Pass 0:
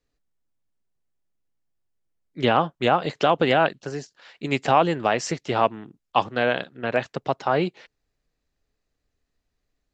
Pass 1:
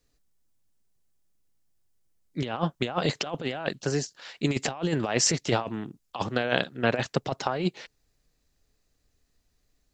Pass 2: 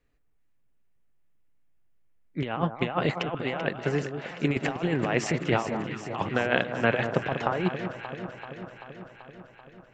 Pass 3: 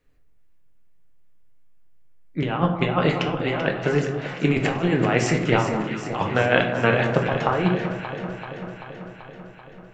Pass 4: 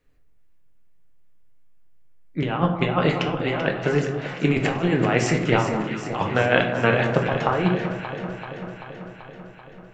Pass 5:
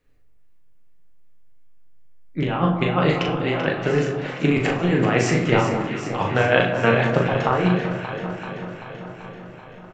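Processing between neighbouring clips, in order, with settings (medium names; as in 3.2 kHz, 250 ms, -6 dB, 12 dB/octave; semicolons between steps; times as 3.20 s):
tone controls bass +3 dB, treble +8 dB; compressor with a negative ratio -24 dBFS, ratio -0.5; trim -1.5 dB
resonant high shelf 3.4 kHz -12 dB, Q 1.5; echo whose repeats swap between lows and highs 193 ms, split 1.3 kHz, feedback 82%, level -8 dB
reverberation RT60 0.60 s, pre-delay 6 ms, DRR 3.5 dB; trim +4 dB
no audible change
doubling 39 ms -5 dB; feedback delay 791 ms, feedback 58%, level -19.5 dB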